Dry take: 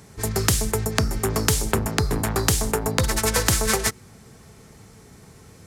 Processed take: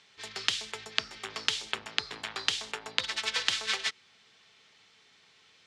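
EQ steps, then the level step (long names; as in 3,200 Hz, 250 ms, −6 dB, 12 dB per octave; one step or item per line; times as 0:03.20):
resonant band-pass 3,300 Hz, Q 2.5
high-frequency loss of the air 88 metres
+5.0 dB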